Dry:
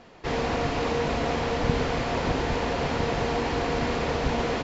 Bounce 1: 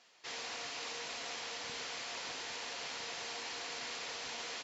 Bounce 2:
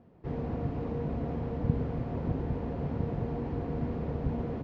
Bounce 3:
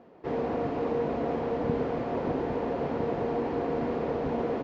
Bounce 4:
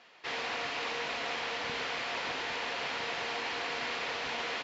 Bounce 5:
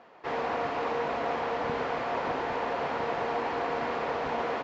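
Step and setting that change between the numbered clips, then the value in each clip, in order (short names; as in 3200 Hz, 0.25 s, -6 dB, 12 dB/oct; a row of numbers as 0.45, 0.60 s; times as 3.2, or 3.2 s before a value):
band-pass, frequency: 7700, 120, 360, 2900, 980 Hz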